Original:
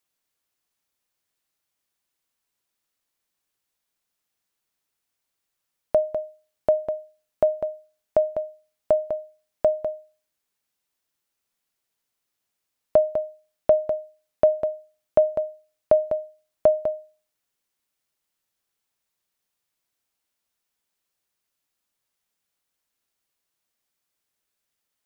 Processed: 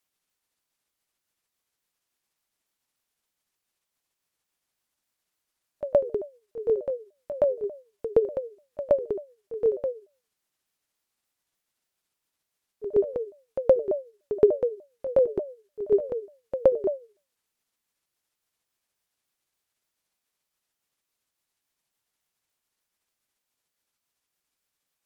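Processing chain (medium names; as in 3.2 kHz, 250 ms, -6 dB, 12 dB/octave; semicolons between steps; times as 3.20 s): sawtooth pitch modulation -8.5 st, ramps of 296 ms; pre-echo 120 ms -12.5 dB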